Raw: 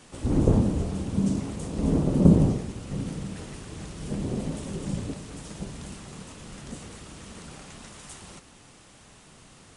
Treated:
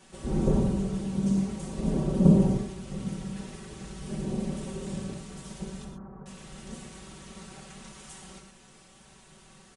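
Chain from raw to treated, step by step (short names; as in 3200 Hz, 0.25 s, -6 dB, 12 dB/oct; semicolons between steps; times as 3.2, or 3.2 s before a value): 5.84–6.26 steep low-pass 1400 Hz 36 dB/oct; comb 5.3 ms, depth 86%; non-linear reverb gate 0.15 s flat, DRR 3 dB; gain -6.5 dB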